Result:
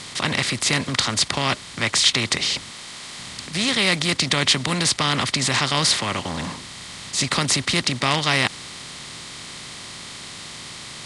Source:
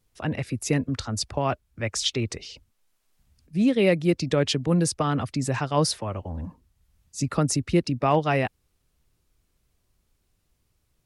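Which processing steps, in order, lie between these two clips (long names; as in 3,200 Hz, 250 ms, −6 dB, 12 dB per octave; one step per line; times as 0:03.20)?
compressor on every frequency bin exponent 0.4
octave-band graphic EQ 125/500/1,000/2,000/4,000/8,000 Hz +5/−4/+5/+11/+12/+11 dB
level −9 dB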